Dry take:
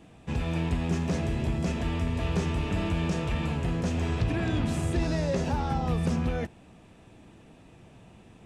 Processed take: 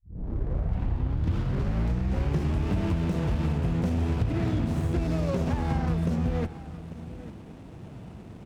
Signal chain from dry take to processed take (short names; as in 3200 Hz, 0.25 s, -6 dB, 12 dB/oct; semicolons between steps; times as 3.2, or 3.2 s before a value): tape start at the beginning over 2.68 s; HPF 44 Hz 12 dB/oct; low shelf 270 Hz +5.5 dB; compressor, threshold -29 dBFS, peak gain reduction 11.5 dB; on a send: tapped delay 93/846 ms -17.5/-15.5 dB; on the sum: running maximum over 17 samples; gain +6 dB